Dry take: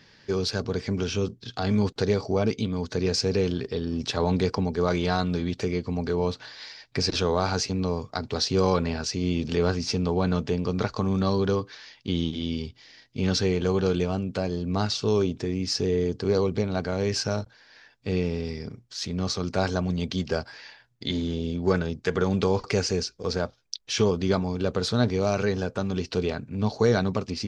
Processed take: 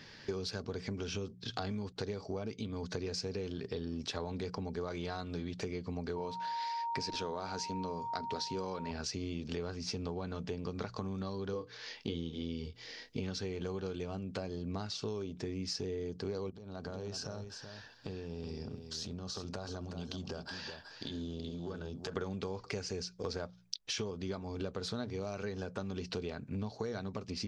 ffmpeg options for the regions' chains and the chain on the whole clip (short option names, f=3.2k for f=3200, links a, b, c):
-filter_complex "[0:a]asettb=1/sr,asplit=3[a][b][c];[a]atrim=end=6.164[d];[b]atrim=start=6.16:end=8.91,asetpts=PTS-STARTPTS,afade=t=in:d=0.004:c=qsin,afade=t=out:st=2.746:d=0.004:c=qsin,aeval=exprs='val(0)+0.0355*sin(2*PI*930*n/s)':c=same,equalizer=f=83:t=o:w=0.54:g=-9[e];[c]atrim=start=8.906[f];[d][e]acrossfade=d=0.004:c1=hsin:c2=qsin[g];[g][f]acrossfade=d=0.004:c1=qsin:c2=hsin,asettb=1/sr,asplit=3[h][i][j];[h]atrim=end=11.534[k];[i]atrim=start=11.53:end=13.2,asetpts=PTS-STARTPTS,afade=t=in:d=0.004:c=qsin,afade=t=out:st=1.666:d=0.004:c=qsin,equalizer=f=460:t=o:w=0.27:g=11,asplit=2[l][m];[m]adelay=24,volume=-6.5dB[n];[l][n]amix=inputs=2:normalize=0,atrim=end_sample=73647[o];[j]atrim=start=13.196[p];[k][o]acrossfade=d=0.004:c1=hsin:c2=qsin[q];[q][p]acrossfade=d=0.004:c1=qsin:c2=hsin,asettb=1/sr,asplit=3[r][s][t];[r]atrim=end=16.504[u];[s]atrim=start=16.5:end=22.17,asetpts=PTS-STARTPTS,afade=t=in:d=0.004:c=qsin,afade=t=out:st=5.666:d=0.004:c=qsin,equalizer=f=2.1k:t=o:w=0.32:g=-14.5,acompressor=threshold=-39dB:ratio=8:attack=3.2:release=140:knee=1:detection=peak,aecho=1:1:375:0.398,atrim=end_sample=250047[v];[t]atrim=start=22.166[w];[u][v]acrossfade=d=0.004:c1=hsin:c2=qsin[x];[x][w]acrossfade=d=0.004:c1=qsin:c2=hsin,bandreject=f=60:t=h:w=6,bandreject=f=120:t=h:w=6,bandreject=f=180:t=h:w=6,acompressor=threshold=-37dB:ratio=12,volume=2dB"